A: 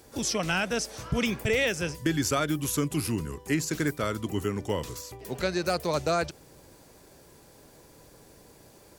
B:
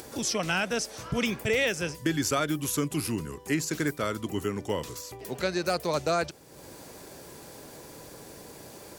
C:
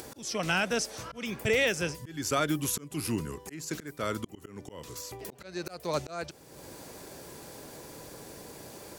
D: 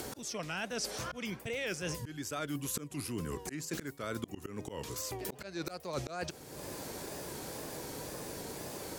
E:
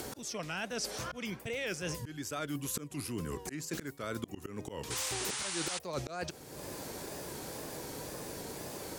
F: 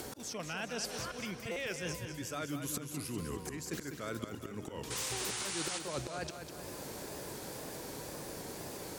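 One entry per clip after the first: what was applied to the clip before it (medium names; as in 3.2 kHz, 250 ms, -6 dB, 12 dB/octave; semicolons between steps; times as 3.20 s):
bass shelf 70 Hz -12 dB; upward compressor, threshold -36 dBFS
slow attack 334 ms
reverse; compression 8:1, threshold -38 dBFS, peak gain reduction 15.5 dB; reverse; wow and flutter 100 cents; trim +3.5 dB
painted sound noise, 4.90–5.79 s, 740–10000 Hz -38 dBFS
buffer glitch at 1.51 s, samples 256, times 8; modulated delay 199 ms, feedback 52%, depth 62 cents, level -8 dB; trim -2 dB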